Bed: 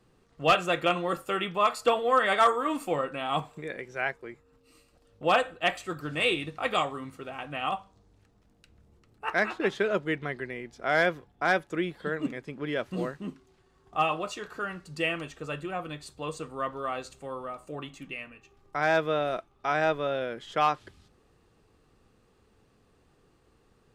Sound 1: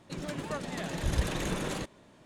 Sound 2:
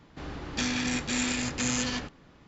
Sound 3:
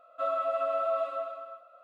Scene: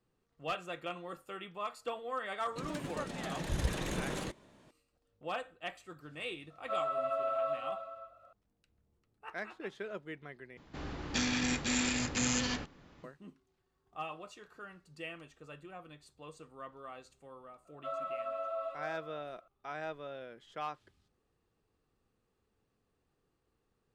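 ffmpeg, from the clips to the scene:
-filter_complex "[3:a]asplit=2[s0][s1];[0:a]volume=0.178,asplit=2[s2][s3];[s2]atrim=end=10.574[s4];[2:a]atrim=end=2.47,asetpts=PTS-STARTPTS,volume=0.708[s5];[s3]atrim=start=13.036[s6];[1:a]atrim=end=2.25,asetpts=PTS-STARTPTS,volume=0.631,afade=t=in:d=0.004:c=hsin,afade=t=out:st=2.246:d=0.004:c=hsin,adelay=2460[s7];[s0]atrim=end=1.83,asetpts=PTS-STARTPTS,volume=0.596,afade=t=in:d=0.004:c=hsin,afade=t=out:st=1.826:d=0.004:c=hsin,adelay=286650S[s8];[s1]atrim=end=1.83,asetpts=PTS-STARTPTS,volume=0.355,afade=t=in:d=0.004:c=hsin,afade=t=out:st=1.826:d=0.004:c=hsin,adelay=17650[s9];[s4][s5]acrossfade=d=0.004:c1=hsin:c2=hsin[s10];[s10][s6]acrossfade=d=0.004:c1=hsin:c2=hsin[s11];[s11][s7][s8][s9]amix=inputs=4:normalize=0"

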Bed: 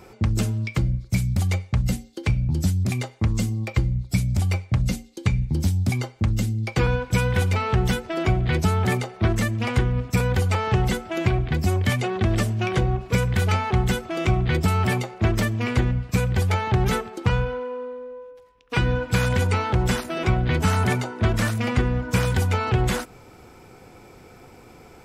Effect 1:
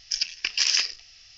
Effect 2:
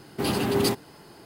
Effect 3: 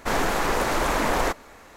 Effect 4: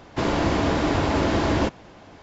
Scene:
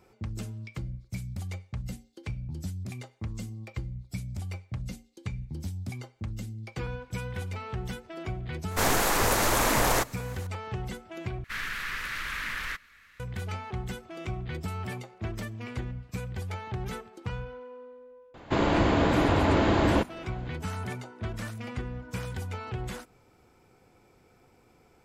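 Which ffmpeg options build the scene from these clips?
-filter_complex "[3:a]asplit=2[s0][s1];[0:a]volume=0.2[s2];[s0]crystalizer=i=2:c=0[s3];[s1]firequalizer=gain_entry='entry(130,0);entry(300,-13);entry(730,-19);entry(1200,2);entry(1700,11);entry(2700,10);entry(6900,-1);entry(12000,3)':delay=0.05:min_phase=1[s4];[4:a]equalizer=f=5600:t=o:w=0.43:g=-11[s5];[s2]asplit=2[s6][s7];[s6]atrim=end=11.444[s8];[s4]atrim=end=1.76,asetpts=PTS-STARTPTS,volume=0.211[s9];[s7]atrim=start=13.196[s10];[s3]atrim=end=1.76,asetpts=PTS-STARTPTS,volume=0.75,afade=t=in:d=0.004:c=hsin,afade=t=out:st=1.756:d=0.004:c=hsin,adelay=8710[s11];[s5]atrim=end=2.22,asetpts=PTS-STARTPTS,volume=0.841,afade=t=in:d=0.004:c=hsin,afade=t=out:st=2.216:d=0.004:c=hsin,adelay=18340[s12];[s8][s9]acrossfade=d=0.004:c1=hsin:c2=hsin[s13];[s13][s10]acrossfade=d=0.004:c1=hsin:c2=hsin[s14];[s14][s11][s12]amix=inputs=3:normalize=0"

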